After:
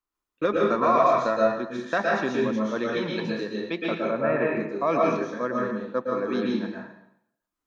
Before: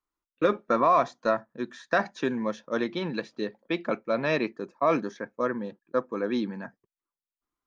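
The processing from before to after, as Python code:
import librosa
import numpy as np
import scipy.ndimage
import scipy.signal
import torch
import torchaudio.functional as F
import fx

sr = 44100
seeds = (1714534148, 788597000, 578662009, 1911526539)

y = fx.lowpass(x, sr, hz=2000.0, slope=24, at=(3.97, 4.49))
y = fx.rev_plate(y, sr, seeds[0], rt60_s=0.74, hf_ratio=0.95, predelay_ms=105, drr_db=-3.0)
y = F.gain(torch.from_numpy(y), -1.5).numpy()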